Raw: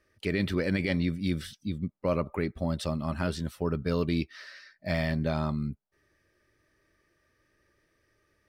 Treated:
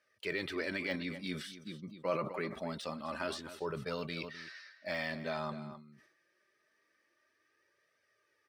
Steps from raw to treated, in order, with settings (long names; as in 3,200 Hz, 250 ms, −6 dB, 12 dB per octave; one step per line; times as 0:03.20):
meter weighting curve A
de-essing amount 100%
flanger 0.25 Hz, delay 1.3 ms, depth 5 ms, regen −32%
slap from a distant wall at 44 metres, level −13 dB
level that may fall only so fast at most 83 dB per second